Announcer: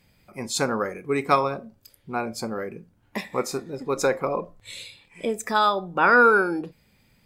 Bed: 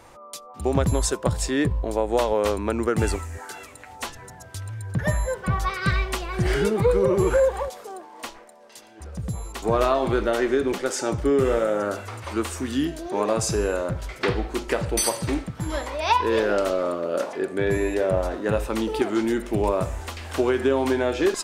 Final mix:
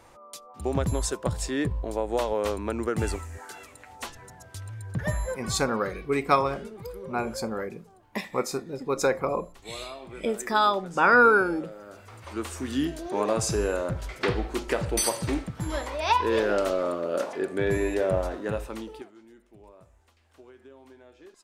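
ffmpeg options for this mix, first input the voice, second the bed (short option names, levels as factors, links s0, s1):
-filter_complex "[0:a]adelay=5000,volume=0.841[s0];[1:a]volume=4.22,afade=t=out:st=5.32:d=0.35:silence=0.177828,afade=t=in:st=11.87:d=0.95:silence=0.133352,afade=t=out:st=18.12:d=1:silence=0.0446684[s1];[s0][s1]amix=inputs=2:normalize=0"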